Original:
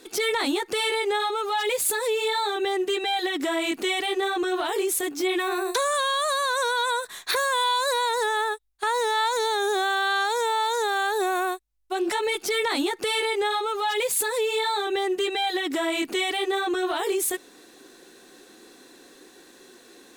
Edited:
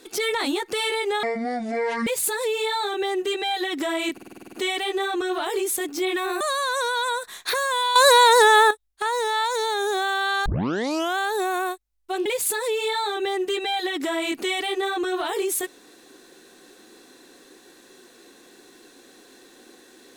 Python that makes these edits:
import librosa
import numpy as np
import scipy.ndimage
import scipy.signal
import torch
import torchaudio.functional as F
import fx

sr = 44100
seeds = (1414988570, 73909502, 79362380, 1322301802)

y = fx.edit(x, sr, fx.speed_span(start_s=1.23, length_s=0.46, speed=0.55),
    fx.stutter(start_s=3.75, slice_s=0.05, count=9),
    fx.cut(start_s=5.63, length_s=0.59),
    fx.clip_gain(start_s=7.77, length_s=0.75, db=10.5),
    fx.tape_start(start_s=10.27, length_s=0.72),
    fx.cut(start_s=12.07, length_s=1.89), tone=tone)